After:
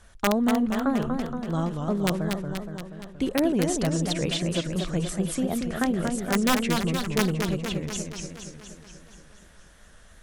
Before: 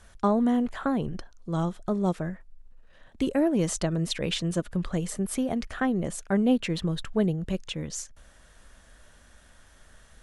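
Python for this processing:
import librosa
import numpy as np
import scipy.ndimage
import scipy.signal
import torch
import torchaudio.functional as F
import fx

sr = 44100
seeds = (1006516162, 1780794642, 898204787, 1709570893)

y = (np.mod(10.0 ** (14.5 / 20.0) * x + 1.0, 2.0) - 1.0) / 10.0 ** (14.5 / 20.0)
y = fx.echo_warbled(y, sr, ms=237, feedback_pct=62, rate_hz=2.8, cents=169, wet_db=-5)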